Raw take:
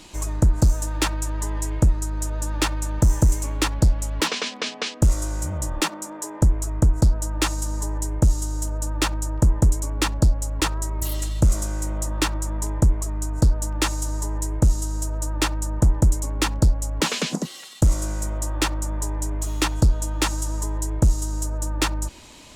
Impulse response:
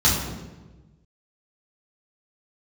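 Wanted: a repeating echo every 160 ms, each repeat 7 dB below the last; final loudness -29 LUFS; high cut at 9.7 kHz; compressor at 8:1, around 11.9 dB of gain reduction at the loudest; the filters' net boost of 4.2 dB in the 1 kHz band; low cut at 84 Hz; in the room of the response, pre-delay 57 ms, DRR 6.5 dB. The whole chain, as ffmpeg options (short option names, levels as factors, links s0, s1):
-filter_complex "[0:a]highpass=84,lowpass=9700,equalizer=f=1000:t=o:g=5,acompressor=threshold=0.0501:ratio=8,aecho=1:1:160|320|480|640|800:0.447|0.201|0.0905|0.0407|0.0183,asplit=2[s0][s1];[1:a]atrim=start_sample=2205,adelay=57[s2];[s1][s2]afir=irnorm=-1:irlink=0,volume=0.0631[s3];[s0][s3]amix=inputs=2:normalize=0,volume=0.891"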